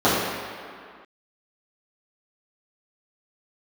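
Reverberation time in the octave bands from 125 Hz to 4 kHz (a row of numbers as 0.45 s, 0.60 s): 1.6 s, 2.0 s, 2.0 s, 2.3 s, no reading, 1.6 s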